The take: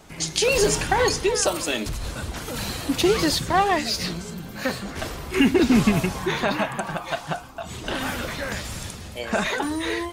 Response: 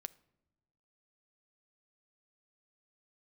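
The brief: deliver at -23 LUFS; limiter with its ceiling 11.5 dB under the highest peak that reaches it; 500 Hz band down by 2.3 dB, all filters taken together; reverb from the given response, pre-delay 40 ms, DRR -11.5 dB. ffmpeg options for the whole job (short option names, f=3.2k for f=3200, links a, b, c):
-filter_complex "[0:a]equalizer=f=500:t=o:g=-3,alimiter=limit=-18.5dB:level=0:latency=1,asplit=2[a][b];[1:a]atrim=start_sample=2205,adelay=40[c];[b][c]afir=irnorm=-1:irlink=0,volume=15.5dB[d];[a][d]amix=inputs=2:normalize=0,volume=-6dB"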